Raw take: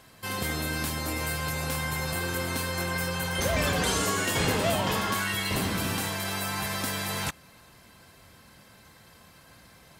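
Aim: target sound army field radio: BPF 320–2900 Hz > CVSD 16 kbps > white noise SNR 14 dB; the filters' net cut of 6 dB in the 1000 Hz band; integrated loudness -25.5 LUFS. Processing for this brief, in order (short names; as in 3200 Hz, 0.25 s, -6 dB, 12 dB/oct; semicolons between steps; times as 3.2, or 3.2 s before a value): BPF 320–2900 Hz; bell 1000 Hz -7.5 dB; CVSD 16 kbps; white noise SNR 14 dB; gain +9 dB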